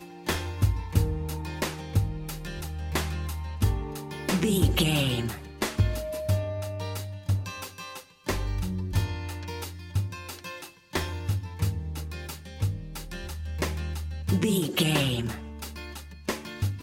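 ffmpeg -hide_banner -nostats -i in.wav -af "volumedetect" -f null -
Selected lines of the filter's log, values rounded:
mean_volume: -29.1 dB
max_volume: -9.8 dB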